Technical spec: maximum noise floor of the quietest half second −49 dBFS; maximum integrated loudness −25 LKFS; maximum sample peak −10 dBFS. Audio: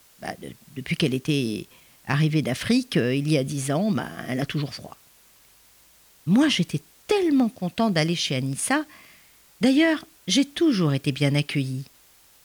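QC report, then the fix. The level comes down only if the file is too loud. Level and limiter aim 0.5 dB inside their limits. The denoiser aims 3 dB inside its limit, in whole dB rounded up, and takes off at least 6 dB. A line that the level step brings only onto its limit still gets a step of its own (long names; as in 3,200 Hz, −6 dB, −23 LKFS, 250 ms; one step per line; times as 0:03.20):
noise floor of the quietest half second −56 dBFS: in spec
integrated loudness −23.5 LKFS: out of spec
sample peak −7.5 dBFS: out of spec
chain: level −2 dB
brickwall limiter −10.5 dBFS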